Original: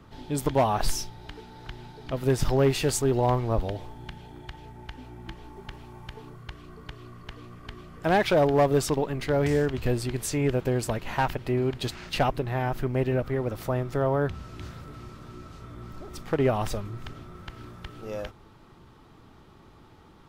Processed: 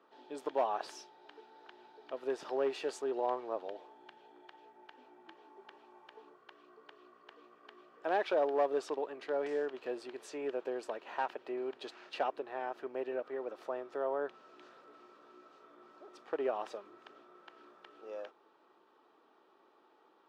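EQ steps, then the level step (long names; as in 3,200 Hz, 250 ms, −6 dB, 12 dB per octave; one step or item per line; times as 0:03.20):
high-pass filter 370 Hz 24 dB per octave
head-to-tape spacing loss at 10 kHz 20 dB
notch filter 2,100 Hz, Q 10
−7.0 dB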